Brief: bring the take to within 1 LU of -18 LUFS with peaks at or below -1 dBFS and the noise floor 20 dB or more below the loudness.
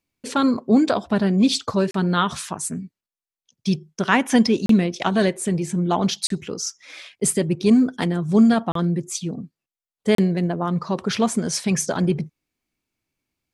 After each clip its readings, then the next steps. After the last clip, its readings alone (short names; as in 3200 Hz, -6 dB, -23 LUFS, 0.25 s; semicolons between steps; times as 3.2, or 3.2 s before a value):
dropouts 5; longest dropout 33 ms; loudness -21.0 LUFS; peak -2.5 dBFS; loudness target -18.0 LUFS
-> interpolate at 1.91/4.66/6.27/8.72/10.15, 33 ms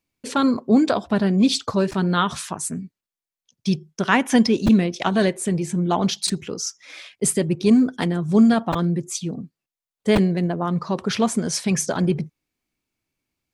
dropouts 0; loudness -21.0 LUFS; peak -2.5 dBFS; loudness target -18.0 LUFS
-> gain +3 dB; limiter -1 dBFS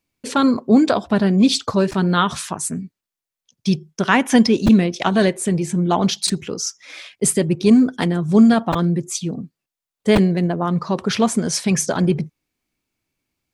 loudness -18.0 LUFS; peak -1.0 dBFS; noise floor -87 dBFS